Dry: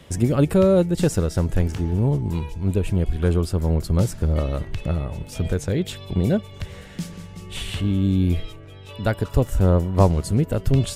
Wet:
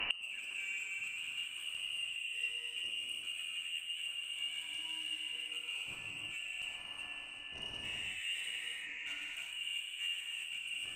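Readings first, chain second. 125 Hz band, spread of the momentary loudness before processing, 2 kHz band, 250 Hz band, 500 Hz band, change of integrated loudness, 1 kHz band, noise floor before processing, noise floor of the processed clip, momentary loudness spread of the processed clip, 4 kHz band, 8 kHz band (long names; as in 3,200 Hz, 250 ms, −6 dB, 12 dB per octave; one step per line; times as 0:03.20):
below −40 dB, 16 LU, +0.5 dB, below −40 dB, below −40 dB, −17.0 dB, −25.5 dB, −41 dBFS, −47 dBFS, 4 LU, +1.5 dB, −11.5 dB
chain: reversed playback
downward compressor 8 to 1, threshold −27 dBFS, peak gain reduction 17 dB
reversed playback
sound drawn into the spectrogram noise, 0:07.83–0:09.06, 210–1,100 Hz −37 dBFS
voice inversion scrambler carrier 2,900 Hz
in parallel at −10 dB: soft clipping −27 dBFS, distortion −12 dB
on the sum: harmonic generator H 5 −8 dB, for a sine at −14.5 dBFS
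reverb whose tail is shaped and stops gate 420 ms flat, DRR −4 dB
gate with flip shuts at −21 dBFS, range −26 dB
level +1 dB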